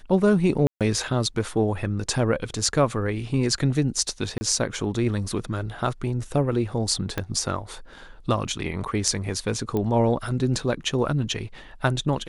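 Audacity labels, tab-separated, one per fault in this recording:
0.670000	0.810000	drop-out 137 ms
4.380000	4.410000	drop-out 30 ms
7.180000	7.180000	click −12 dBFS
9.770000	9.770000	click −15 dBFS

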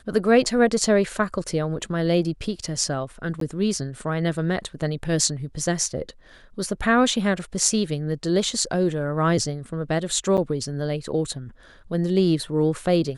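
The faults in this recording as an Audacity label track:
3.400000	3.410000	drop-out 13 ms
10.370000	10.380000	drop-out 7.4 ms

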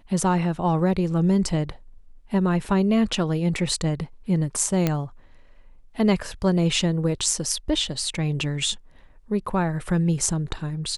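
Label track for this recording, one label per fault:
4.870000	4.870000	click −8 dBFS

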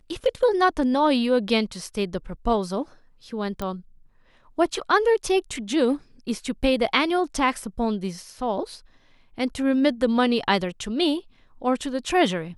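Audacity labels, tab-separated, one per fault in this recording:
3.620000	3.620000	click −16 dBFS

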